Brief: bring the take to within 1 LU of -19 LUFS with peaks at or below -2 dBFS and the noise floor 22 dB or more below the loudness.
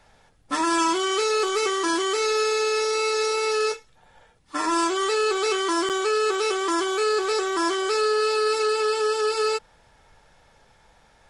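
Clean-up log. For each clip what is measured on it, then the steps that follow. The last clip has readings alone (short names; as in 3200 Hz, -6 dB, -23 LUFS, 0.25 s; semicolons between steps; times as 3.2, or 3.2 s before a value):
dropouts 1; longest dropout 7.3 ms; loudness -23.0 LUFS; peak -12.0 dBFS; loudness target -19.0 LUFS
-> interpolate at 5.89, 7.3 ms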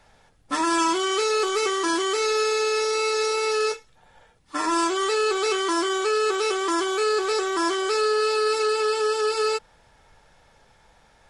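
dropouts 0; loudness -23.0 LUFS; peak -12.0 dBFS; loudness target -19.0 LUFS
-> gain +4 dB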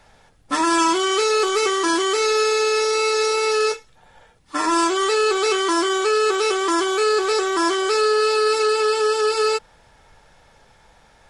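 loudness -19.0 LUFS; peak -8.0 dBFS; noise floor -54 dBFS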